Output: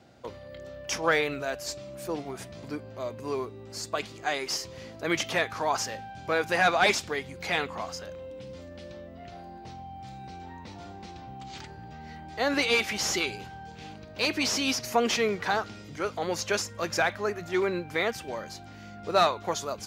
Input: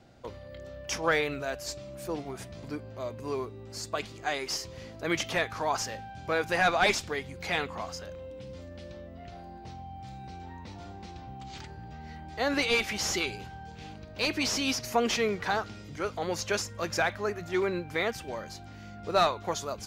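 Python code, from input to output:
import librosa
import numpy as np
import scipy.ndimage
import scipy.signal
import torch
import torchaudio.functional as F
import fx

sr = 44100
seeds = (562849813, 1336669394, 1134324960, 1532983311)

y = fx.highpass(x, sr, hz=120.0, slope=6)
y = y * librosa.db_to_amplitude(2.0)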